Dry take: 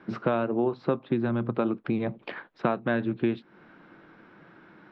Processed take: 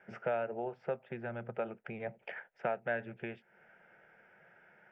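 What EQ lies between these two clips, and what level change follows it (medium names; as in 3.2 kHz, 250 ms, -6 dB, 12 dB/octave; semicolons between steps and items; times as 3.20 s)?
bass shelf 230 Hz -12 dB; static phaser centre 1.1 kHz, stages 6; -3.5 dB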